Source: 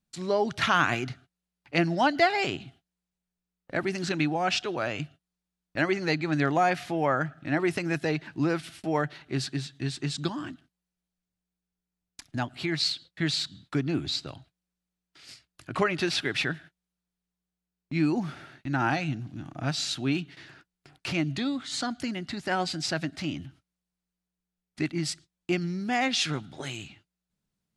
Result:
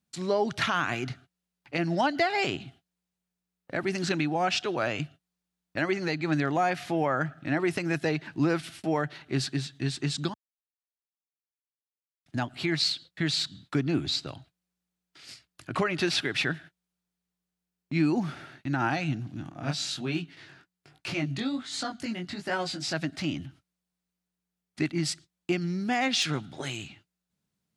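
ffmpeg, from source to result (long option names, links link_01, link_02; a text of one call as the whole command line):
ffmpeg -i in.wav -filter_complex "[0:a]asettb=1/sr,asplit=3[link_01][link_02][link_03];[link_01]atrim=end=19.494[link_04];[link_02]atrim=start=19.49:end=22.94,asetpts=PTS-STARTPTS,afade=type=in:duration=0.004:curve=qsin,afade=type=out:start_time=3.446:duration=0.004:curve=qsin,flanger=delay=18:depth=4.9:speed=1.3[link_05];[link_03]atrim=start=22.936[link_06];[link_04][link_05]acrossfade=duration=0.004:curve1=hsin:curve2=qsin[link_07];[link_07][link_06]acrossfade=duration=0.004:curve1=qsin:curve2=hsin,asplit=3[link_08][link_09][link_10];[link_08]atrim=end=10.34,asetpts=PTS-STARTPTS,afade=type=out:start_time=10.336:duration=0.004:curve=hsin[link_11];[link_09]atrim=start=10.34:end=12.26,asetpts=PTS-STARTPTS,volume=0[link_12];[link_10]atrim=start=12.26,asetpts=PTS-STARTPTS,afade=type=in:duration=0.004:curve=hsin[link_13];[link_11][link_12][link_13]concat=n=3:v=0:a=1,highpass=68,deesser=0.5,alimiter=limit=-17dB:level=0:latency=1:release=178,volume=1.5dB" out.wav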